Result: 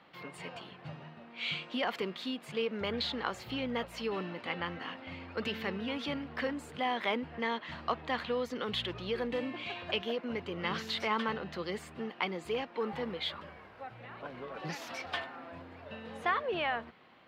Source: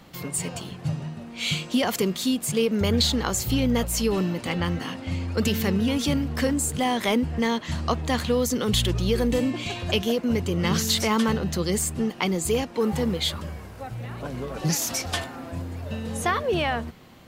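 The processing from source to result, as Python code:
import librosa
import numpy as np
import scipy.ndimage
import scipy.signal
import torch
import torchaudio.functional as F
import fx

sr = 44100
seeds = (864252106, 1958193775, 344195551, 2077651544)

y = fx.highpass(x, sr, hz=1200.0, slope=6)
y = fx.air_absorb(y, sr, metres=390.0)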